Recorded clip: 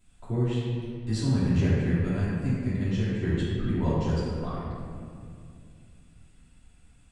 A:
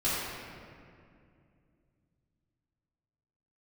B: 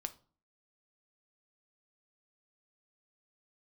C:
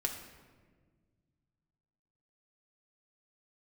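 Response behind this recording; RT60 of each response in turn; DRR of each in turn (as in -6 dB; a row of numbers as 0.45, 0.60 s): A; 2.4, 0.40, 1.6 s; -12.5, 8.5, 1.0 dB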